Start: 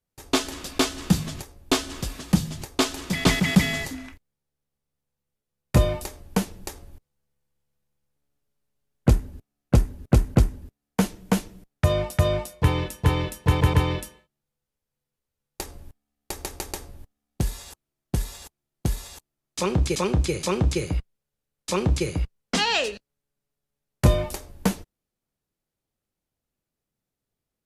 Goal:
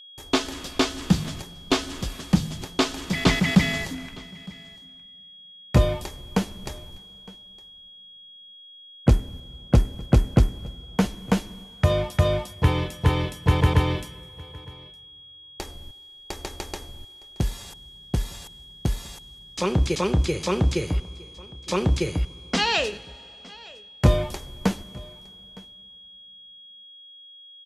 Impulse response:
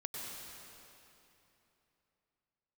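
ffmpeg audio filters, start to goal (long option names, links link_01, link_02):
-filter_complex "[0:a]asplit=2[link_01][link_02];[1:a]atrim=start_sample=2205[link_03];[link_02][link_03]afir=irnorm=-1:irlink=0,volume=-19.5dB[link_04];[link_01][link_04]amix=inputs=2:normalize=0,aeval=exprs='val(0)+0.00631*sin(2*PI*3300*n/s)':channel_layout=same,acrossover=split=6500[link_05][link_06];[link_06]acompressor=threshold=-44dB:ratio=4:attack=1:release=60[link_07];[link_05][link_07]amix=inputs=2:normalize=0,aecho=1:1:912:0.0708"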